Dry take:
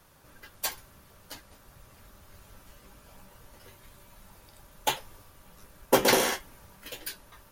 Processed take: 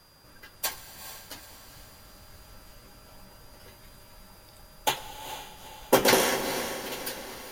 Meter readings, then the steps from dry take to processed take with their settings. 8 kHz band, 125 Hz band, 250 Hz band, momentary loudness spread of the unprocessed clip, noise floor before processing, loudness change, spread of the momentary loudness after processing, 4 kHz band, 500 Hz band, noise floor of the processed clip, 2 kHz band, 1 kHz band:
+1.5 dB, +2.0 dB, +2.0 dB, 24 LU, −57 dBFS, 0.0 dB, 22 LU, +1.5 dB, +1.5 dB, −53 dBFS, +2.0 dB, +1.5 dB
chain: feedback delay with all-pass diffusion 453 ms, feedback 51%, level −10.5 dB
reverb whose tail is shaped and stops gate 450 ms flat, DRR 12 dB
steady tone 4,800 Hz −61 dBFS
level +1 dB

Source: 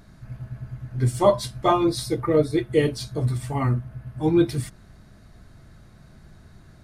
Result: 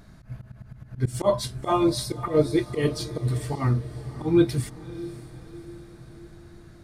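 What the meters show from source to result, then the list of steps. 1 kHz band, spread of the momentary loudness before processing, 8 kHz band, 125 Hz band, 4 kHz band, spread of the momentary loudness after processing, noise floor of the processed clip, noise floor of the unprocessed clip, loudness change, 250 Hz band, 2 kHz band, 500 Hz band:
−4.0 dB, 16 LU, −0.5 dB, −1.5 dB, −0.5 dB, 20 LU, −49 dBFS, −51 dBFS, −2.5 dB, −1.0 dB, −2.5 dB, −3.0 dB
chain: volume swells 107 ms
feedback delay with all-pass diffusion 566 ms, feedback 53%, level −16 dB

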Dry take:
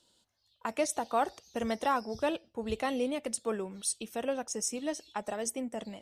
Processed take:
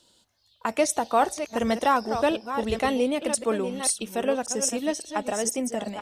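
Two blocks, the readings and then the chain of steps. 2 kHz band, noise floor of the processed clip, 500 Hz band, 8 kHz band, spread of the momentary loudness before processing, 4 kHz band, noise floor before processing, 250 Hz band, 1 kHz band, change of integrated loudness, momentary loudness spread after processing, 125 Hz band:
+8.0 dB, −65 dBFS, +8.0 dB, +8.0 dB, 7 LU, +8.0 dB, −72 dBFS, +8.0 dB, +8.0 dB, +8.0 dB, 6 LU, +8.0 dB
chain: delay that plays each chunk backwards 558 ms, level −9 dB
level +7.5 dB

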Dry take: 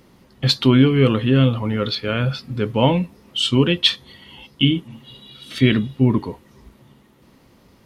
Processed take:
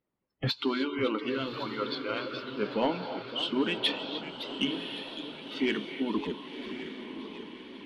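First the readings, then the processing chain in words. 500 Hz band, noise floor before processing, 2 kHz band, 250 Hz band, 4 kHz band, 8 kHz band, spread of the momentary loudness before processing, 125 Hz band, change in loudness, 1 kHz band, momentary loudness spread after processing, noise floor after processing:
−10.0 dB, −54 dBFS, −8.0 dB, −13.5 dB, −11.0 dB, −17.5 dB, 10 LU, −23.5 dB, −14.0 dB, −7.5 dB, 11 LU, −70 dBFS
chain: low-shelf EQ 71 Hz −10 dB
harmonic and percussive parts rebalanced harmonic −15 dB
in parallel at +0.5 dB: downward compressor, threshold −34 dBFS, peak gain reduction 21 dB
on the sum: reverb whose tail is shaped and stops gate 330 ms rising, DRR 9.5 dB
noise reduction from a noise print of the clip's start 27 dB
low-pass filter 2,600 Hz 12 dB per octave
flanger 0.41 Hz, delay 1.5 ms, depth 1.7 ms, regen +86%
soft clipping −15.5 dBFS, distortion −21 dB
feedback delay with all-pass diffusion 1,095 ms, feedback 50%, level −10 dB
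feedback echo with a swinging delay time 557 ms, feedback 68%, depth 215 cents, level −13 dB
level −1.5 dB

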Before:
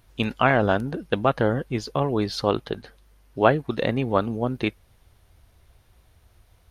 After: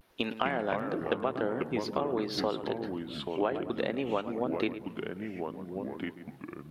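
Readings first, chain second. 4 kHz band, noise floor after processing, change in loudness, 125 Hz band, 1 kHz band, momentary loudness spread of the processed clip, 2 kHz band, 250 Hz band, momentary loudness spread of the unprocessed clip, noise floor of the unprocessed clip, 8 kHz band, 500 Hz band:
−5.5 dB, −50 dBFS, −9.5 dB, −14.5 dB, −9.0 dB, 8 LU, −9.5 dB, −6.5 dB, 9 LU, −59 dBFS, can't be measured, −7.0 dB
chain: Chebyshev high-pass filter 300 Hz, order 2
parametric band 7,400 Hz −8.5 dB 0.92 octaves
pitch vibrato 0.52 Hz 46 cents
feedback echo with a low-pass in the loop 107 ms, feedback 30%, low-pass 1,900 Hz, level −14 dB
downward compressor 6 to 1, threshold −27 dBFS, peak gain reduction 14.5 dB
delay with pitch and tempo change per echo 201 ms, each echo −4 semitones, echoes 3, each echo −6 dB

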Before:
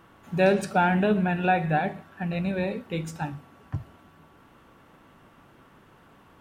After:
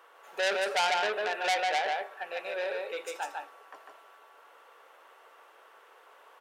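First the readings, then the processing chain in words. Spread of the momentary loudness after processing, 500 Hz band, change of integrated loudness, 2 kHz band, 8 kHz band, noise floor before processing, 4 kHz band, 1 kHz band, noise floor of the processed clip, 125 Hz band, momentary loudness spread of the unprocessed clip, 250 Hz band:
11 LU, −5.5 dB, −4.5 dB, −1.0 dB, +4.0 dB, −56 dBFS, +7.5 dB, −3.5 dB, −58 dBFS, below −35 dB, 16 LU, −25.5 dB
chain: elliptic high-pass filter 450 Hz, stop band 80 dB
single-tap delay 149 ms −3.5 dB
saturating transformer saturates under 4,000 Hz

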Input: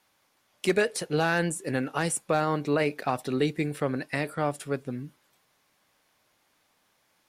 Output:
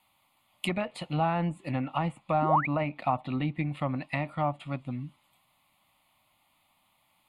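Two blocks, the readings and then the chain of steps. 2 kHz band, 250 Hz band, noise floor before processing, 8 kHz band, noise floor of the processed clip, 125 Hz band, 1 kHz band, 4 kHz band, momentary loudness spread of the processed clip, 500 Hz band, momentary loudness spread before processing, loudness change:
−7.0 dB, −2.0 dB, −70 dBFS, below −15 dB, −70 dBFS, +1.5 dB, +2.5 dB, −5.0 dB, 10 LU, −6.0 dB, 8 LU, −2.5 dB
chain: sound drawn into the spectrogram rise, 0:02.42–0:02.67, 260–2,600 Hz −24 dBFS
phaser with its sweep stopped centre 1,600 Hz, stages 6
treble cut that deepens with the level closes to 1,600 Hz, closed at −28 dBFS
level +3 dB

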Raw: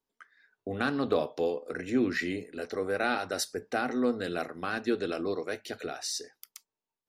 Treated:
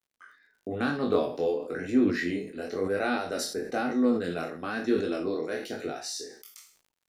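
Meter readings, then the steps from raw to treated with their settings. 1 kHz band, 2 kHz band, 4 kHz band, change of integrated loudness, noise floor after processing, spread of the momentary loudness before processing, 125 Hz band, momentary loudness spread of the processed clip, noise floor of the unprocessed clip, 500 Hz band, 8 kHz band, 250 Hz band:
0.0 dB, −0.5 dB, −0.5 dB, +2.5 dB, −81 dBFS, 9 LU, +2.5 dB, 10 LU, below −85 dBFS, +2.5 dB, −0.5 dB, +4.0 dB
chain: peak hold with a decay on every bin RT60 0.34 s
noise gate with hold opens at −53 dBFS
parametric band 250 Hz +5.5 dB 2.5 octaves
chorus effect 1 Hz, delay 19.5 ms, depth 6.2 ms
surface crackle 76 per second −60 dBFS
level that may fall only so fast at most 100 dB per second

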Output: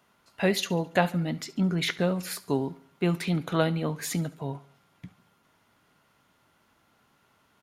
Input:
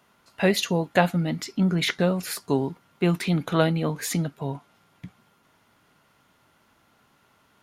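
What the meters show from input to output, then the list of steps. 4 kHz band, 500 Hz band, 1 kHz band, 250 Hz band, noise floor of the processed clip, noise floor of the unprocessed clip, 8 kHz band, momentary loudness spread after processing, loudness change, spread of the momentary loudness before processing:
−3.5 dB, −3.5 dB, −3.5 dB, −3.5 dB, −67 dBFS, −64 dBFS, −3.5 dB, 8 LU, −3.5 dB, 8 LU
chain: repeating echo 71 ms, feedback 48%, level −20 dB
level −3.5 dB

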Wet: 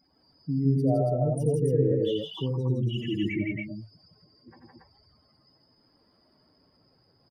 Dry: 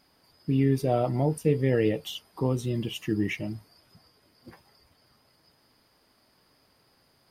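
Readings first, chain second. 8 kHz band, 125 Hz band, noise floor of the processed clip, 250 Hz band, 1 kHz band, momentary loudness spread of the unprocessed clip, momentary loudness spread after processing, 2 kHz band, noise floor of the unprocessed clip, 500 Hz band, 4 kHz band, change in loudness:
can't be measured, +2.0 dB, −66 dBFS, 0.0 dB, −3.5 dB, 12 LU, 10 LU, −2.5 dB, −66 dBFS, +0.5 dB, 0.0 dB, +0.5 dB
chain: expanding power law on the bin magnitudes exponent 2.3
loudspeakers that aren't time-aligned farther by 30 metres −7 dB, 56 metres −2 dB, 96 metres −2 dB
level −3 dB

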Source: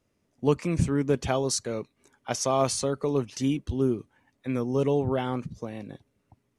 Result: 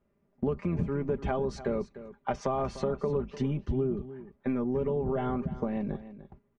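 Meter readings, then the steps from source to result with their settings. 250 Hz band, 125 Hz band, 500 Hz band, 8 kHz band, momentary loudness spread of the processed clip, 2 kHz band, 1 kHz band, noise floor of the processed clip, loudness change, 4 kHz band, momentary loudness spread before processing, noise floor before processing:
−3.5 dB, −3.5 dB, −3.5 dB, below −20 dB, 7 LU, −5.5 dB, −3.5 dB, −73 dBFS, −4.5 dB, −15.5 dB, 13 LU, −74 dBFS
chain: sub-octave generator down 1 octave, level −5 dB
low-pass filter 1,600 Hz 12 dB per octave
noise gate −57 dBFS, range −8 dB
comb filter 5 ms, depth 61%
in parallel at +2 dB: brickwall limiter −20 dBFS, peak gain reduction 11 dB
on the sum: downward compressor 6 to 1, threshold −27 dBFS, peak gain reduction 14 dB
on a send: single-tap delay 299 ms −14.5 dB

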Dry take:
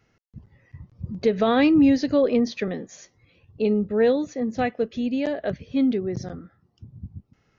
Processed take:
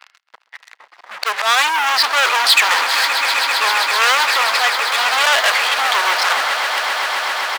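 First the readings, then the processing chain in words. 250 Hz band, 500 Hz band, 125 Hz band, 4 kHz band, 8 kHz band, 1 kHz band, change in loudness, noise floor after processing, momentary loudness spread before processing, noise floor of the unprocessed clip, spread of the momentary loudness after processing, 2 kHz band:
below −25 dB, −4.0 dB, below −30 dB, +24.5 dB, can't be measured, +17.5 dB, +8.0 dB, −60 dBFS, 21 LU, −67 dBFS, 7 LU, +22.0 dB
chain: volume swells 535 ms
in parallel at −2 dB: output level in coarse steps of 21 dB
on the sum: high-frequency loss of the air 88 metres
reversed playback
downward compressor 12 to 1, threshold −27 dBFS, peak gain reduction 15.5 dB
reversed playback
downsampling to 11,025 Hz
leveller curve on the samples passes 5
high-pass filter 980 Hz 24 dB per octave
echo that builds up and dies away 131 ms, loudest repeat 8, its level −14 dB
boost into a limiter +19.5 dB
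saturating transformer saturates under 2,900 Hz

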